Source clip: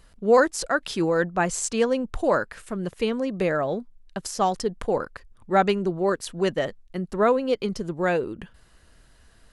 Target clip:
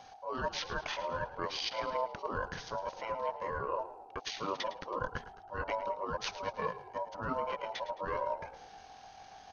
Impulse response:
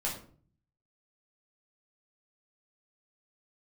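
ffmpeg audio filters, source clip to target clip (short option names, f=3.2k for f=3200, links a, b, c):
-filter_complex "[0:a]highpass=f=280:w=0.5412,highpass=f=280:w=1.3066,afftfilt=real='re*lt(hypot(re,im),0.794)':imag='im*lt(hypot(re,im),0.794)':win_size=1024:overlap=0.75,highshelf=f=6.4k:g=6,areverse,acompressor=threshold=-35dB:ratio=16,areverse,flanger=delay=8:depth=4.3:regen=8:speed=1.7:shape=triangular,aeval=exprs='val(0)+0.00126*(sin(2*PI*50*n/s)+sin(2*PI*2*50*n/s)/2+sin(2*PI*3*50*n/s)/3+sin(2*PI*4*50*n/s)/4+sin(2*PI*5*50*n/s)/5)':c=same,aeval=exprs='val(0)*sin(2*PI*1500*n/s)':c=same,asetrate=22696,aresample=44100,atempo=1.94306,asplit=6[a][b][c][d][e][f];[b]adelay=108,afreqshift=-34,volume=-14dB[g];[c]adelay=216,afreqshift=-68,volume=-20.2dB[h];[d]adelay=324,afreqshift=-102,volume=-26.4dB[i];[e]adelay=432,afreqshift=-136,volume=-32.6dB[j];[f]adelay=540,afreqshift=-170,volume=-38.8dB[k];[a][g][h][i][j][k]amix=inputs=6:normalize=0,volume=8.5dB"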